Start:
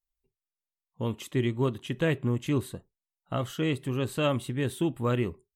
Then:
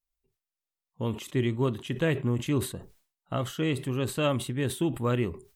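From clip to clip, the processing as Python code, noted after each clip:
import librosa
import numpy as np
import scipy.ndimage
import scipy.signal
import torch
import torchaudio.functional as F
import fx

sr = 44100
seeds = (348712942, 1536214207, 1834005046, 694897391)

y = fx.sustainer(x, sr, db_per_s=140.0)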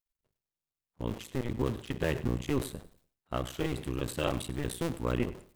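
y = fx.cycle_switch(x, sr, every=2, mode='muted')
y = fx.echo_feedback(y, sr, ms=98, feedback_pct=27, wet_db=-17)
y = y * 10.0 ** (-1.5 / 20.0)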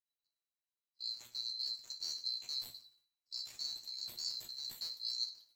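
y = fx.band_swap(x, sr, width_hz=4000)
y = fx.comb_fb(y, sr, f0_hz=120.0, decay_s=0.15, harmonics='all', damping=0.0, mix_pct=90)
y = y * 10.0 ** (-3.5 / 20.0)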